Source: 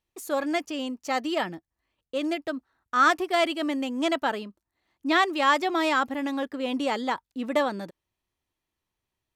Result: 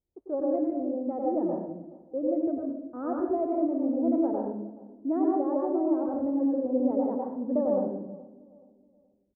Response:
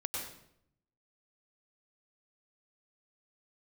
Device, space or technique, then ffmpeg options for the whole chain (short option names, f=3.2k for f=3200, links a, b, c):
next room: -filter_complex "[0:a]asettb=1/sr,asplit=3[a][b][c];[a]atrim=end=5.194[d];[b]atrim=start=5.19:end=6.02,asetpts=PTS-STARTPTS,afade=t=in:d=0.004:c=qsin,afade=t=out:st=0.826:d=0.004:c=qsin,equalizer=f=1.6k:t=o:w=1.4:g=-4.5[e];[c]atrim=start=6.016[f];[d][e]acrossfade=d=0.004:c1=hsin:c2=qsin[g];[g][f]acrossfade=d=0.004:c1=qsin:c2=hsin,lowpass=f=620:w=0.5412,lowpass=f=620:w=1.3066,asplit=2[h][i];[i]adelay=424,lowpass=f=970:p=1,volume=-19.5dB,asplit=2[j][k];[k]adelay=424,lowpass=f=970:p=1,volume=0.38,asplit=2[l][m];[m]adelay=424,lowpass=f=970:p=1,volume=0.38[n];[h][j][l][n]amix=inputs=4:normalize=0[o];[1:a]atrim=start_sample=2205[p];[o][p]afir=irnorm=-1:irlink=0"